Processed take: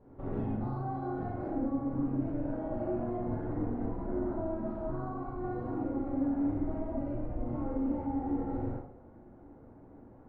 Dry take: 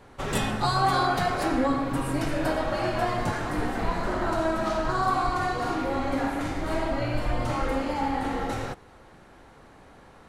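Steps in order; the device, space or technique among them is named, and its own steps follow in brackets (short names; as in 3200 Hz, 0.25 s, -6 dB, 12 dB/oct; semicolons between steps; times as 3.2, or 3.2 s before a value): television next door (compressor, threshold -29 dBFS, peak gain reduction 10 dB; LPF 550 Hz 12 dB/oct; reverb RT60 0.60 s, pre-delay 34 ms, DRR -5.5 dB); gain -6.5 dB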